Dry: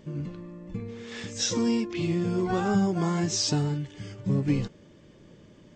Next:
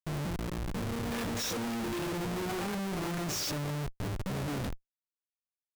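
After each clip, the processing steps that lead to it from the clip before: comb of notches 1 kHz; de-hum 55.16 Hz, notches 28; Schmitt trigger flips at -39.5 dBFS; trim -4 dB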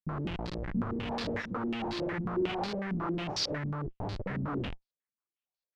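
in parallel at -9 dB: short-mantissa float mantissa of 2-bit; on the sum: step-sequenced low-pass 11 Hz 230–4400 Hz; trim -5 dB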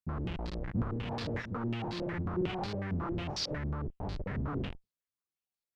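octave divider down 1 oct, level +1 dB; trim -3.5 dB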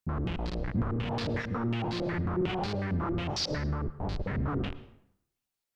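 in parallel at 0 dB: peak limiter -33 dBFS, peak gain reduction 10.5 dB; on the sum: plate-style reverb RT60 0.74 s, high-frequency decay 0.7×, pre-delay 95 ms, DRR 15.5 dB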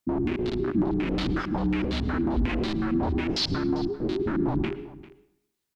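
frequency shift -420 Hz; delay 395 ms -19 dB; trim +5 dB

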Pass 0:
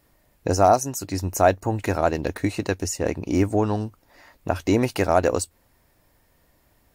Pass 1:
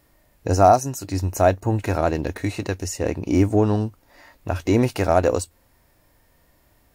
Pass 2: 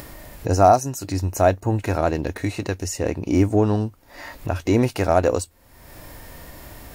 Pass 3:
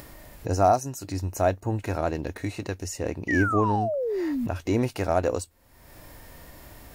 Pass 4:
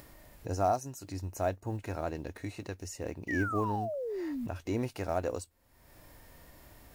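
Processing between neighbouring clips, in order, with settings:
harmonic-percussive split harmonic +8 dB; trim -3 dB
upward compressor, threshold -23 dBFS
painted sound fall, 3.28–4.47 s, 220–2000 Hz -21 dBFS; trim -6 dB
block-companded coder 7-bit; trim -8.5 dB

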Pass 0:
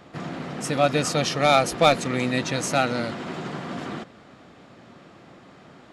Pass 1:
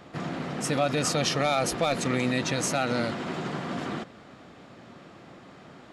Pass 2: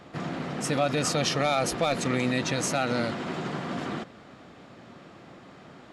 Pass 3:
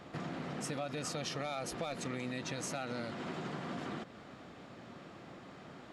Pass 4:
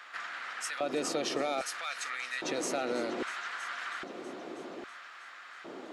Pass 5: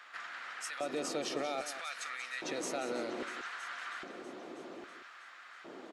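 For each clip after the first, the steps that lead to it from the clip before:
peak limiter -15 dBFS, peak gain reduction 11.5 dB
treble shelf 11 kHz -3 dB
compression 3:1, threshold -36 dBFS, peak gain reduction 12 dB; trim -3 dB
multi-head delay 322 ms, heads all three, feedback 51%, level -19 dB; LFO high-pass square 0.62 Hz 350–1500 Hz; trim +4.5 dB
delay 185 ms -11 dB; trim -4.5 dB

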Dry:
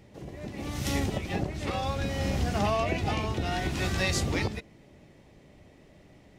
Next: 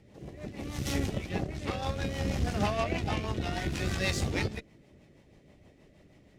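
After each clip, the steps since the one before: Chebyshev shaper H 7 -32 dB, 8 -25 dB, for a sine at -13 dBFS; rotary cabinet horn 6.3 Hz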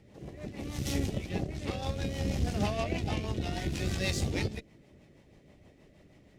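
dynamic bell 1.3 kHz, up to -7 dB, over -49 dBFS, Q 0.92

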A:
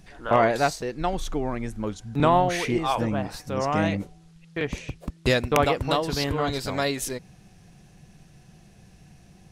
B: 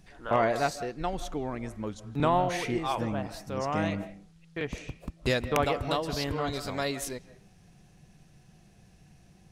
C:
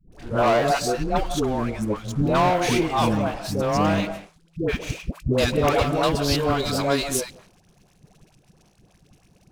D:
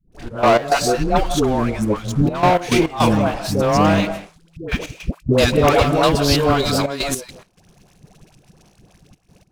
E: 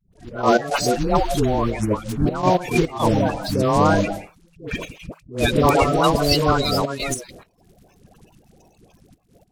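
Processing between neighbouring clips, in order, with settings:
reverberation RT60 0.35 s, pre-delay 120 ms, DRR 14.5 dB; trim -5.5 dB
peaking EQ 1.9 kHz -8.5 dB 0.23 oct; waveshaping leveller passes 3; phase dispersion highs, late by 123 ms, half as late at 540 Hz
trance gate ".x.x.xxxxxxxxxxx" 105 bpm -12 dB; trim +6 dB
coarse spectral quantiser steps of 30 dB; vibrato 0.51 Hz 36 cents; attacks held to a fixed rise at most 180 dB/s; trim -1 dB

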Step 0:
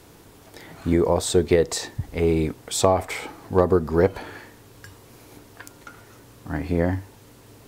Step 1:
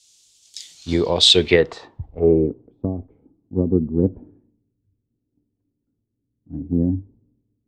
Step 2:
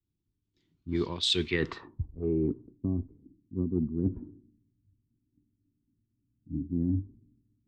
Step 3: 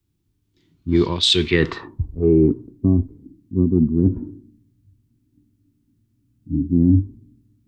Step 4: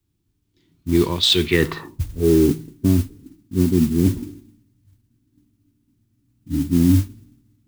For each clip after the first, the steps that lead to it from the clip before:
low-pass sweep 7.1 kHz -> 260 Hz, 0.73–2.82 s; resonant high shelf 2.4 kHz +10.5 dB, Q 1.5; three bands expanded up and down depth 100%; trim -1.5 dB
level-controlled noise filter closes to 300 Hz, open at -11.5 dBFS; high-order bell 610 Hz -14 dB 1.1 oct; reverse; compression 5:1, threshold -26 dBFS, peak gain reduction 15.5 dB; reverse
harmonic-percussive split harmonic +6 dB; trim +8.5 dB
de-hum 52.77 Hz, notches 4; modulation noise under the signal 20 dB

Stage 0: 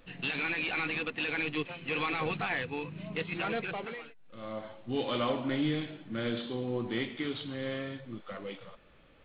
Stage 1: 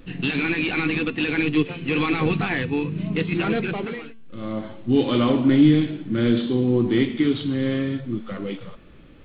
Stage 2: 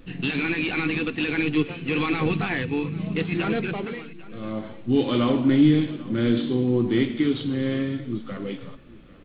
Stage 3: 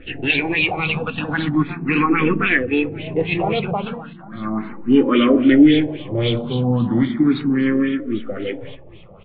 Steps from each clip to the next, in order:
resonant low shelf 440 Hz +7.5 dB, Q 1.5; de-hum 225.6 Hz, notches 29; trim +7 dB
delay 795 ms -20 dB; trim -2 dB
LFO low-pass sine 3.7 Hz 730–3700 Hz; on a send at -23 dB: reverberation RT60 0.30 s, pre-delay 4 ms; on the sum: barber-pole phaser +0.36 Hz; trim +8 dB

